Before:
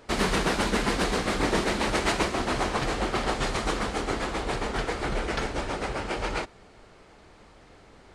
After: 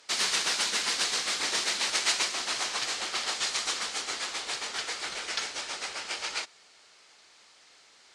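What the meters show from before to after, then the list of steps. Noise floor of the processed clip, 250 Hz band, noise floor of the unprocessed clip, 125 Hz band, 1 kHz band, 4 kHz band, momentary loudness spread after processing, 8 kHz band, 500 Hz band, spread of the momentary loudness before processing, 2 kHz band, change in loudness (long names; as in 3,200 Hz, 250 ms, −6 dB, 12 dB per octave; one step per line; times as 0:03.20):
−58 dBFS, −19.5 dB, −53 dBFS, below −25 dB, −8.0 dB, +5.5 dB, 8 LU, +7.5 dB, −14.0 dB, 6 LU, −2.0 dB, −1.0 dB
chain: resonant band-pass 5,800 Hz, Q 1.1
level +8.5 dB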